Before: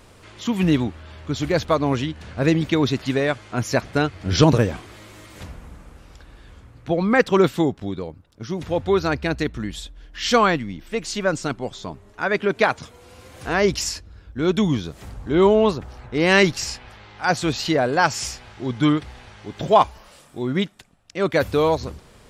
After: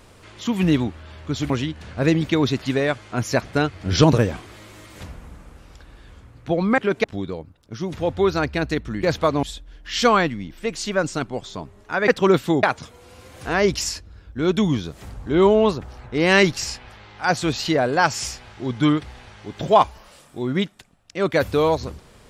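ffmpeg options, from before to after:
-filter_complex "[0:a]asplit=8[s0][s1][s2][s3][s4][s5][s6][s7];[s0]atrim=end=1.502[s8];[s1]atrim=start=1.898:end=7.182[s9];[s2]atrim=start=12.368:end=12.632[s10];[s3]atrim=start=7.728:end=9.722[s11];[s4]atrim=start=1.498:end=1.902[s12];[s5]atrim=start=9.718:end=12.372[s13];[s6]atrim=start=7.178:end=7.732[s14];[s7]atrim=start=12.628[s15];[s8][s9]acrossfade=d=0.004:c1=hsin:c2=hsin[s16];[s16][s10]acrossfade=d=0.004:c1=hsin:c2=hsin[s17];[s17][s11]acrossfade=d=0.004:c1=hsin:c2=hsin[s18];[s18][s12]acrossfade=d=0.004:c1=hsin:c2=hsin[s19];[s19][s13]acrossfade=d=0.004:c1=hsin:c2=hsin[s20];[s20][s14]acrossfade=d=0.004:c1=hsin:c2=hsin[s21];[s21][s15]acrossfade=d=0.004:c1=hsin:c2=hsin"

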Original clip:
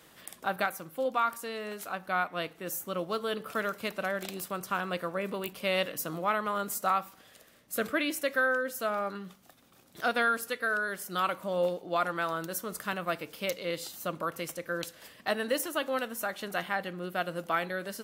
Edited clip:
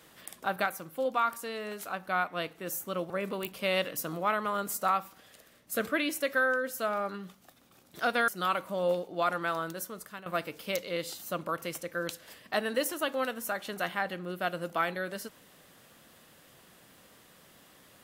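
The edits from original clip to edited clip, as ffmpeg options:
-filter_complex "[0:a]asplit=4[s0][s1][s2][s3];[s0]atrim=end=3.102[s4];[s1]atrim=start=5.108:end=10.292[s5];[s2]atrim=start=11.018:end=13,asetpts=PTS-STARTPTS,afade=t=out:st=1.292:d=0.69:silence=0.188365[s6];[s3]atrim=start=13,asetpts=PTS-STARTPTS,afade=t=in:d=0.004:c=hsin:silence=0.188365[s7];[s4][s5]acrossfade=d=0.004:c1=hsin:c2=hsin[s8];[s6][s7]concat=n=2:v=0:a=1[s9];[s8][s9]acrossfade=d=0.004:c1=hsin:c2=hsin"

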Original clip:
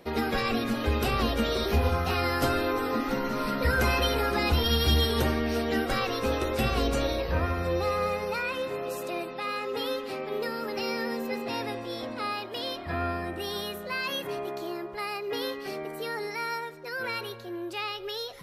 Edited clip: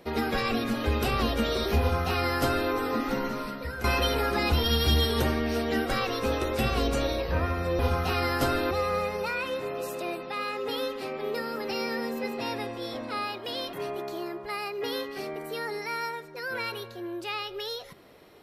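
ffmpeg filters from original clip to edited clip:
-filter_complex "[0:a]asplit=5[s0][s1][s2][s3][s4];[s0]atrim=end=3.84,asetpts=PTS-STARTPTS,afade=t=out:st=3.24:d=0.6:c=qua:silence=0.251189[s5];[s1]atrim=start=3.84:end=7.792,asetpts=PTS-STARTPTS,afade=t=in:d=0.004:c=hsin:silence=0.251189[s6];[s2]atrim=start=1.798:end=2.722[s7];[s3]atrim=start=7.788:end=12.812[s8];[s4]atrim=start=14.218[s9];[s5][s6]concat=n=2:v=0:a=1[s10];[s10][s7]acrossfade=d=0.004:c1=hsin:c2=hsin[s11];[s11][s8]acrossfade=d=0.004:c1=hsin:c2=hsin[s12];[s12][s9]acrossfade=d=0.004:c1=hsin:c2=hsin"

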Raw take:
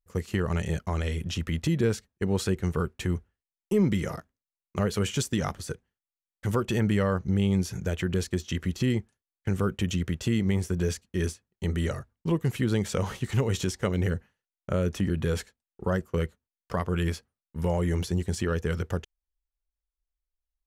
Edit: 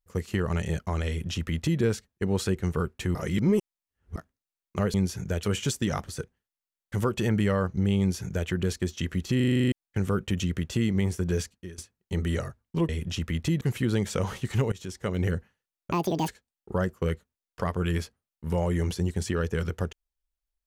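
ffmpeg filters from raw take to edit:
-filter_complex "[0:a]asplit=20[s0][s1][s2][s3][s4][s5][s6][s7][s8][s9][s10][s11][s12][s13][s14][s15][s16][s17][s18][s19];[s0]atrim=end=3.152[s20];[s1]atrim=start=3.148:end=4.162,asetpts=PTS-STARTPTS,areverse[s21];[s2]atrim=start=4.158:end=4.942[s22];[s3]atrim=start=7.498:end=7.992[s23];[s4]atrim=start=4.938:end=8.912[s24];[s5]atrim=start=8.868:end=8.912[s25];[s6]atrim=start=8.868:end=8.912[s26];[s7]atrim=start=8.868:end=8.912[s27];[s8]atrim=start=8.868:end=8.912[s28];[s9]atrim=start=8.868:end=8.912[s29];[s10]atrim=start=8.868:end=8.912[s30];[s11]atrim=start=8.868:end=8.912[s31];[s12]atrim=start=8.868:end=8.912[s32];[s13]atrim=start=9.228:end=11.29,asetpts=PTS-STARTPTS,afade=t=out:st=1.812:d=0.25:c=qua:silence=0.0891251[s33];[s14]atrim=start=11.29:end=12.402,asetpts=PTS-STARTPTS,afade=t=in:d=0.004:c=hsin:silence=0.0891251[s34];[s15]atrim=start=1.078:end=1.802[s35];[s16]atrim=start=12.398:end=13.51,asetpts=PTS-STARTPTS,afade=t=out:st=1.108:d=0.004:c=hsin:silence=0.112202[s36];[s17]atrim=start=13.51:end=14.714,asetpts=PTS-STARTPTS,afade=t=in:d=0.52:silence=0.112202[s37];[s18]atrim=start=14.71:end=15.4,asetpts=PTS-STARTPTS,asetrate=84231,aresample=44100,atrim=end_sample=15931,asetpts=PTS-STARTPTS[s38];[s19]atrim=start=15.396[s39];[s20][s21]acrossfade=d=0.004:c1=hsin:c2=hsin[s40];[s40][s22]acrossfade=d=0.004:c1=hsin:c2=hsin[s41];[s41][s23]acrossfade=d=0.004:c1=hsin:c2=hsin[s42];[s42][s24]acrossfade=d=0.004:c1=hsin:c2=hsin[s43];[s43][s25]acrossfade=d=0.004:c1=hsin:c2=hsin[s44];[s44][s26]acrossfade=d=0.004:c1=hsin:c2=hsin[s45];[s45][s27]acrossfade=d=0.004:c1=hsin:c2=hsin[s46];[s46][s28]acrossfade=d=0.004:c1=hsin:c2=hsin[s47];[s47][s29]acrossfade=d=0.004:c1=hsin:c2=hsin[s48];[s48][s30]acrossfade=d=0.004:c1=hsin:c2=hsin[s49];[s49][s31]acrossfade=d=0.004:c1=hsin:c2=hsin[s50];[s50][s32]acrossfade=d=0.004:c1=hsin:c2=hsin[s51];[s33][s34]concat=n=2:v=0:a=1[s52];[s51][s52]acrossfade=d=0.004:c1=hsin:c2=hsin[s53];[s53][s35]acrossfade=d=0.004:c1=hsin:c2=hsin[s54];[s36][s37]concat=n=2:v=0:a=1[s55];[s54][s55]acrossfade=d=0.004:c1=hsin:c2=hsin[s56];[s56][s38]acrossfade=d=0.004:c1=hsin:c2=hsin[s57];[s57][s39]acrossfade=d=0.004:c1=hsin:c2=hsin"

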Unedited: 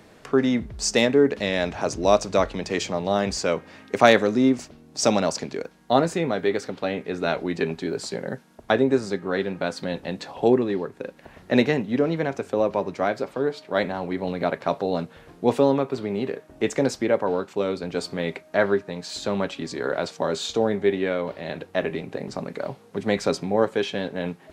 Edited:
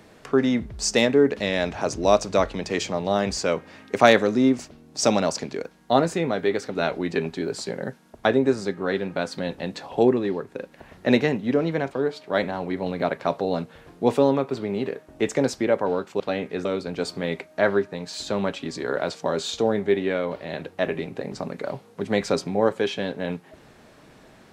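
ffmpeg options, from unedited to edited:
-filter_complex "[0:a]asplit=5[s0][s1][s2][s3][s4];[s0]atrim=end=6.752[s5];[s1]atrim=start=7.198:end=12.362[s6];[s2]atrim=start=13.318:end=17.612[s7];[s3]atrim=start=6.748:end=7.202[s8];[s4]atrim=start=17.608[s9];[s5][s6]acrossfade=d=0.004:c1=hsin:c2=hsin[s10];[s10][s7]acrossfade=d=0.004:c1=hsin:c2=hsin[s11];[s11][s8]acrossfade=d=0.004:c1=hsin:c2=hsin[s12];[s12][s9]acrossfade=d=0.004:c1=hsin:c2=hsin"

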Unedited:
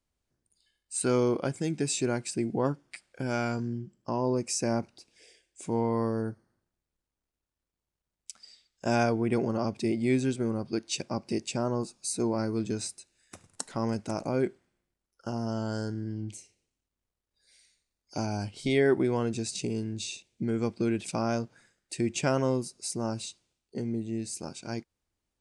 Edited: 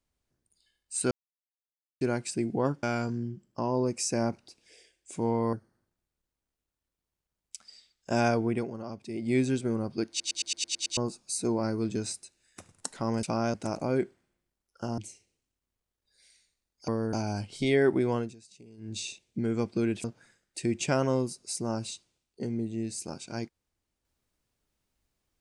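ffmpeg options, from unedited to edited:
-filter_complex "[0:a]asplit=23[s0][s1][s2][s3][s4][s5][s6][s7][s8][s9][s10][s11][s12][s13][s14][s15][s16][s17][s18][s19][s20][s21][s22];[s0]atrim=end=1.11,asetpts=PTS-STARTPTS,afade=t=out:st=1.106:d=0.004:c=hsin[s23];[s1]atrim=start=1.11:end=2.01,asetpts=PTS-STARTPTS,volume=0[s24];[s2]atrim=start=2.01:end=2.832,asetpts=PTS-STARTPTS,afade=t=in:d=0.004:c=hsin[s25];[s3]atrim=start=3.328:end=6.032[s26];[s4]atrim=start=6.278:end=9.43,asetpts=PTS-STARTPTS,afade=t=out:st=2.962:d=0.19:silence=0.334965[s27];[s5]atrim=start=9.43:end=9.88,asetpts=PTS-STARTPTS,volume=0.335[s28];[s6]atrim=start=9.88:end=10.952,asetpts=PTS-STARTPTS,afade=t=in:d=0.19:silence=0.334965[s29];[s7]atrim=start=10.838:end=10.952[s30];[s8]atrim=start=10.838:end=10.952[s31];[s9]atrim=start=10.838:end=10.952[s32];[s10]atrim=start=10.838:end=10.952[s33];[s11]atrim=start=10.838:end=10.952[s34];[s12]atrim=start=10.838:end=10.952[s35];[s13]atrim=start=10.838:end=10.952[s36];[s14]atrim=start=11.718:end=13.982[s37];[s15]atrim=start=21.078:end=21.392[s38];[s16]atrim=start=13.978:end=15.422[s39];[s17]atrim=start=16.268:end=18.172[s40];[s18]atrim=start=6.028:end=6.282[s41];[s19]atrim=start=18.168:end=19.39,asetpts=PTS-STARTPTS,afade=t=out:st=1.032:d=0.19:silence=0.0944061[s42];[s20]atrim=start=19.39:end=19.81,asetpts=PTS-STARTPTS,volume=0.0944[s43];[s21]atrim=start=19.81:end=21.082,asetpts=PTS-STARTPTS,afade=t=in:d=0.19:silence=0.0944061[s44];[s22]atrim=start=21.388[s45];[s23][s24][s25]concat=n=3:v=0:a=1[s46];[s46][s26]acrossfade=d=0.004:c1=hsin:c2=hsin[s47];[s27][s28][s29]concat=n=3:v=0:a=1[s48];[s47][s48]acrossfade=d=0.004:c1=hsin:c2=hsin[s49];[s49][s30]acrossfade=d=0.004:c1=hsin:c2=hsin[s50];[s50][s31]acrossfade=d=0.004:c1=hsin:c2=hsin[s51];[s51][s32]acrossfade=d=0.004:c1=hsin:c2=hsin[s52];[s52][s33]acrossfade=d=0.004:c1=hsin:c2=hsin[s53];[s53][s34]acrossfade=d=0.004:c1=hsin:c2=hsin[s54];[s54][s35]acrossfade=d=0.004:c1=hsin:c2=hsin[s55];[s55][s36]acrossfade=d=0.004:c1=hsin:c2=hsin[s56];[s56][s37]acrossfade=d=0.004:c1=hsin:c2=hsin[s57];[s57][s38]acrossfade=d=0.004:c1=hsin:c2=hsin[s58];[s58][s39]acrossfade=d=0.004:c1=hsin:c2=hsin[s59];[s59][s40]acrossfade=d=0.004:c1=hsin:c2=hsin[s60];[s60][s41]acrossfade=d=0.004:c1=hsin:c2=hsin[s61];[s42][s43][s44]concat=n=3:v=0:a=1[s62];[s61][s62]acrossfade=d=0.004:c1=hsin:c2=hsin[s63];[s63][s45]acrossfade=d=0.004:c1=hsin:c2=hsin"

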